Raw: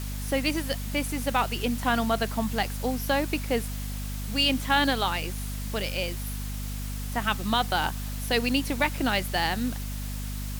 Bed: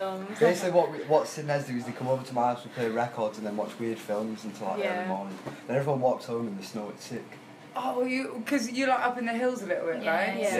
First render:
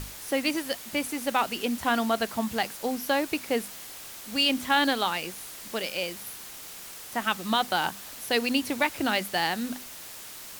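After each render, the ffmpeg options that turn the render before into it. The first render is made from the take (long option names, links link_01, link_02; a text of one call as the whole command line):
ffmpeg -i in.wav -af "bandreject=frequency=50:width_type=h:width=6,bandreject=frequency=100:width_type=h:width=6,bandreject=frequency=150:width_type=h:width=6,bandreject=frequency=200:width_type=h:width=6,bandreject=frequency=250:width_type=h:width=6" out.wav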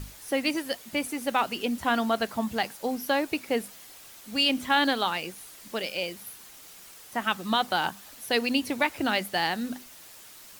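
ffmpeg -i in.wav -af "afftdn=noise_reduction=7:noise_floor=-43" out.wav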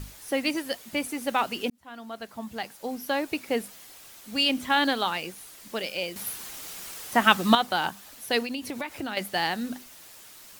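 ffmpeg -i in.wav -filter_complex "[0:a]asettb=1/sr,asplit=3[link_01][link_02][link_03];[link_01]atrim=end=8.424[link_04];[link_02]atrim=start=8.42:end=9.17,asetpts=PTS-STARTPTS,afade=type=in:duration=0.004:curve=qsin,afade=type=out:start_time=0.746:duration=0.004:curve=qsin,acompressor=threshold=-29dB:ratio=5:attack=3.2:release=140:knee=1:detection=peak[link_05];[link_03]atrim=start=9.166[link_06];[link_04][link_05]acrossfade=duration=0.004:curve1=hsin:curve2=qsin[link_07];[link_07][link_06]acrossfade=duration=0.004:curve1=qsin:curve2=hsin,asplit=4[link_08][link_09][link_10][link_11];[link_08]atrim=end=1.7,asetpts=PTS-STARTPTS,afade=type=out:start_time=1.696:duration=0.004:curve=hsin[link_12];[link_09]atrim=start=1.7:end=6.162,asetpts=PTS-STARTPTS,afade=type=in:duration=1.79[link_13];[link_10]atrim=start=6.158:end=7.552,asetpts=PTS-STARTPTS,volume=8.5dB[link_14];[link_11]atrim=start=7.548[link_15];[link_12][link_13]concat=n=2:v=0:a=1[link_16];[link_16][link_14]acrossfade=duration=0.004:curve1=hsin:curve2=hsin[link_17];[link_17][link_15]acrossfade=duration=0.004:curve1=hsin:curve2=hsin" out.wav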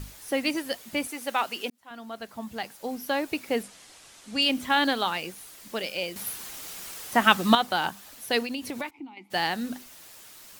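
ffmpeg -i in.wav -filter_complex "[0:a]asettb=1/sr,asplit=3[link_01][link_02][link_03];[link_01]atrim=end=1.074[link_04];[link_02]atrim=start=1.07:end=1.91,asetpts=PTS-STARTPTS,afade=type=in:duration=0.004:curve=qsin,afade=type=out:start_time=0.836:duration=0.004:curve=qsin,highpass=frequency=530:poles=1[link_05];[link_03]atrim=start=1.906[link_06];[link_04][link_05]acrossfade=duration=0.004:curve1=hsin:curve2=qsin[link_07];[link_07][link_06]acrossfade=duration=0.004:curve1=qsin:curve2=hsin,asettb=1/sr,asplit=3[link_08][link_09][link_10];[link_08]atrim=end=3.634[link_11];[link_09]atrim=start=3.63:end=4.42,asetpts=PTS-STARTPTS,afade=type=in:duration=0.004:curve=qsin,afade=type=out:start_time=0.786:duration=0.004:curve=qsin,lowpass=frequency=9700:width=0.5412,lowpass=frequency=9700:width=1.3066[link_12];[link_10]atrim=start=4.416[link_13];[link_11][link_12]acrossfade=duration=0.004:curve1=hsin:curve2=qsin[link_14];[link_14][link_13]acrossfade=duration=0.004:curve1=qsin:curve2=hsin,asplit=3[link_15][link_16][link_17];[link_15]afade=type=out:start_time=8.89:duration=0.02[link_18];[link_16]asplit=3[link_19][link_20][link_21];[link_19]bandpass=frequency=300:width_type=q:width=8,volume=0dB[link_22];[link_20]bandpass=frequency=870:width_type=q:width=8,volume=-6dB[link_23];[link_21]bandpass=frequency=2240:width_type=q:width=8,volume=-9dB[link_24];[link_22][link_23][link_24]amix=inputs=3:normalize=0,afade=type=in:start_time=8.89:duration=0.02,afade=type=out:start_time=9.3:duration=0.02[link_25];[link_17]afade=type=in:start_time=9.3:duration=0.02[link_26];[link_18][link_25][link_26]amix=inputs=3:normalize=0" out.wav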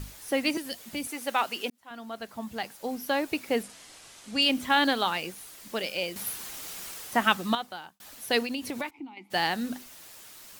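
ffmpeg -i in.wav -filter_complex "[0:a]asettb=1/sr,asplit=3[link_01][link_02][link_03];[link_01]atrim=end=0.574[link_04];[link_02]atrim=start=0.57:end=1.07,asetpts=PTS-STARTPTS,afade=type=in:duration=0.004:curve=qsin,afade=type=out:start_time=0.496:duration=0.004:curve=qsin,acrossover=split=300|3000[link_05][link_06][link_07];[link_06]acompressor=threshold=-40dB:ratio=6:attack=3.2:release=140:knee=2.83:detection=peak[link_08];[link_05][link_08][link_07]amix=inputs=3:normalize=0[link_09];[link_03]atrim=start=1.066[link_10];[link_04][link_09]acrossfade=duration=0.004:curve1=hsin:curve2=qsin[link_11];[link_11][link_10]acrossfade=duration=0.004:curve1=qsin:curve2=hsin,asettb=1/sr,asplit=3[link_12][link_13][link_14];[link_12]atrim=end=3.654[link_15];[link_13]atrim=start=3.65:end=4.31,asetpts=PTS-STARTPTS,afade=type=in:duration=0.004:curve=qsin,afade=type=out:start_time=0.656:duration=0.004:curve=qsin,asplit=2[link_16][link_17];[link_17]adelay=43,volume=-6dB[link_18];[link_16][link_18]amix=inputs=2:normalize=0,atrim=end_sample=29106[link_19];[link_14]atrim=start=4.306[link_20];[link_15][link_19]acrossfade=duration=0.004:curve1=hsin:curve2=qsin[link_21];[link_21][link_20]acrossfade=duration=0.004:curve1=qsin:curve2=hsin,asplit=2[link_22][link_23];[link_22]atrim=end=8,asetpts=PTS-STARTPTS,afade=type=out:start_time=6.84:duration=1.16[link_24];[link_23]atrim=start=8,asetpts=PTS-STARTPTS,afade=type=in:duration=0.004:curve=hsin[link_25];[link_24][link_25]concat=n=2:v=0:a=1" out.wav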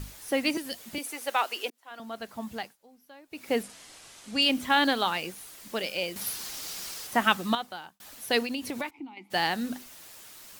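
ffmpeg -i in.wav -filter_complex "[0:a]asettb=1/sr,asplit=3[link_01][link_02][link_03];[link_01]atrim=end=0.984[link_04];[link_02]atrim=start=0.98:end=2,asetpts=PTS-STARTPTS,afade=type=in:duration=0.004:curve=qsin,afade=type=out:start_time=1.016:duration=0.004:curve=qsin,highpass=frequency=330:width=0.5412,highpass=frequency=330:width=1.3066[link_05];[link_03]atrim=start=1.996[link_06];[link_04][link_05]acrossfade=duration=0.004:curve1=hsin:curve2=qsin[link_07];[link_07][link_06]acrossfade=duration=0.004:curve1=qsin:curve2=hsin,asettb=1/sr,asplit=3[link_08][link_09][link_10];[link_08]atrim=end=6.214[link_11];[link_09]atrim=start=6.21:end=7.07,asetpts=PTS-STARTPTS,afade=type=in:duration=0.004:curve=qsin,afade=type=out:start_time=0.856:duration=0.004:curve=qsin,equalizer=frequency=4900:width_type=o:width=0.79:gain=7[link_12];[link_10]atrim=start=7.066[link_13];[link_11][link_12]acrossfade=duration=0.004:curve1=hsin:curve2=qsin[link_14];[link_14][link_13]acrossfade=duration=0.004:curve1=qsin:curve2=hsin,asplit=3[link_15][link_16][link_17];[link_15]atrim=end=2.76,asetpts=PTS-STARTPTS,afade=type=out:start_time=2.55:duration=0.21:silence=0.0668344[link_18];[link_16]atrim=start=2.76:end=3.3,asetpts=PTS-STARTPTS,volume=-23.5dB[link_19];[link_17]atrim=start=3.3,asetpts=PTS-STARTPTS,afade=type=in:duration=0.21:silence=0.0668344[link_20];[link_18][link_19][link_20]concat=n=3:v=0:a=1" out.wav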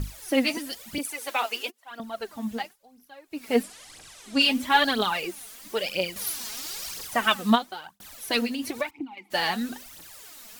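ffmpeg -i in.wav -af "aphaser=in_gain=1:out_gain=1:delay=4.8:decay=0.66:speed=1:type=triangular" out.wav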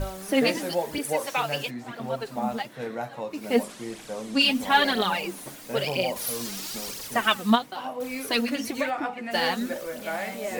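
ffmpeg -i in.wav -i bed.wav -filter_complex "[1:a]volume=-4.5dB[link_01];[0:a][link_01]amix=inputs=2:normalize=0" out.wav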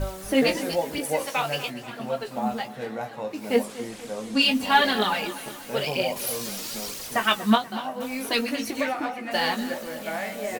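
ffmpeg -i in.wav -filter_complex "[0:a]asplit=2[link_01][link_02];[link_02]adelay=19,volume=-8dB[link_03];[link_01][link_03]amix=inputs=2:normalize=0,aecho=1:1:241|482|723|964|1205:0.178|0.0907|0.0463|0.0236|0.012" out.wav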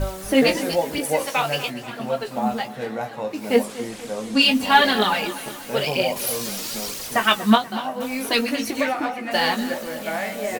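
ffmpeg -i in.wav -af "volume=4dB" out.wav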